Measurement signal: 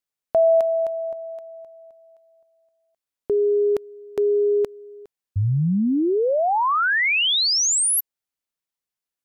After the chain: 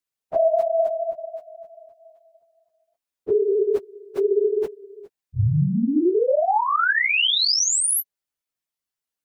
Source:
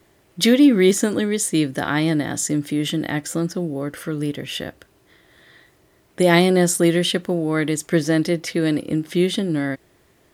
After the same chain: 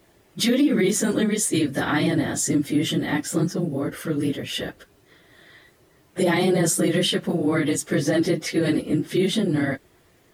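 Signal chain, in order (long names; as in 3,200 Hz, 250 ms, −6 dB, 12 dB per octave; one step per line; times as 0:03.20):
random phases in long frames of 50 ms
brickwall limiter −12 dBFS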